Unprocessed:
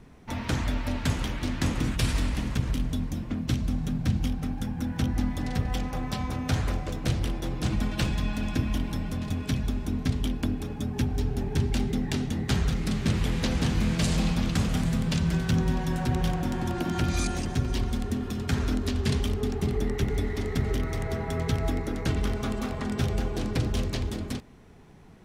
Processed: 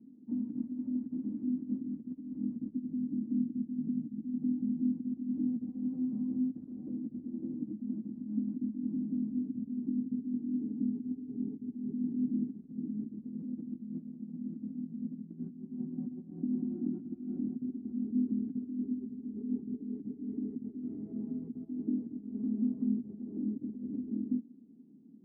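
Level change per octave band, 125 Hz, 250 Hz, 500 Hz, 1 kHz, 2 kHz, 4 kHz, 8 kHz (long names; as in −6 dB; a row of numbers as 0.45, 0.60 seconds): −20.5 dB, −2.5 dB, −18.5 dB, below −35 dB, below −40 dB, below −40 dB, below −40 dB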